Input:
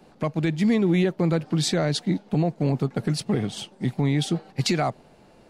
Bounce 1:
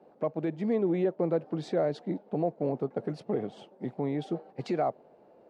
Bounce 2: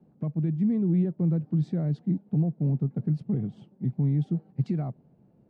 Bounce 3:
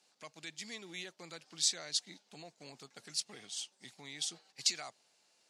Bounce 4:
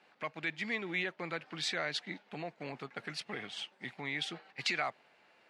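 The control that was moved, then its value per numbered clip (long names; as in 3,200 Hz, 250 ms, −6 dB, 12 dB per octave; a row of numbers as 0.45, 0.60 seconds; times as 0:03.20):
resonant band-pass, frequency: 530, 150, 6,500, 2,100 Hertz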